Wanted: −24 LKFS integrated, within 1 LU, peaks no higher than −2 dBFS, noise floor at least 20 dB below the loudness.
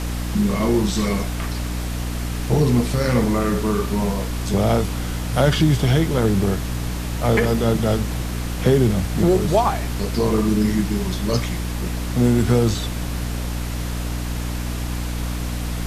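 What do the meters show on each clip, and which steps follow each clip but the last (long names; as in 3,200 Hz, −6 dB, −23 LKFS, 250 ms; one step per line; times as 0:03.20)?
mains hum 60 Hz; hum harmonics up to 300 Hz; level of the hum −23 dBFS; background noise floor −26 dBFS; target noise floor −41 dBFS; integrated loudness −21.0 LKFS; sample peak −3.5 dBFS; target loudness −24.0 LKFS
→ mains-hum notches 60/120/180/240/300 Hz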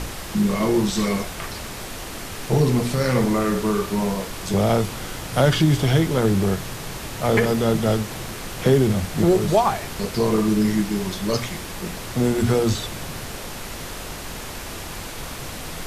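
mains hum none found; background noise floor −34 dBFS; target noise floor −43 dBFS
→ noise reduction from a noise print 9 dB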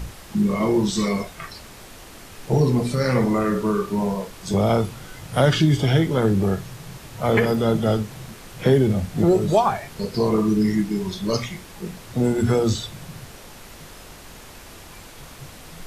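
background noise floor −43 dBFS; integrated loudness −21.5 LKFS; sample peak −5.0 dBFS; target loudness −24.0 LKFS
→ level −2.5 dB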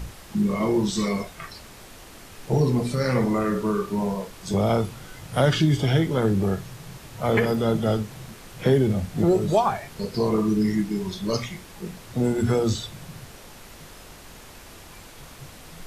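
integrated loudness −24.0 LKFS; sample peak −7.5 dBFS; background noise floor −45 dBFS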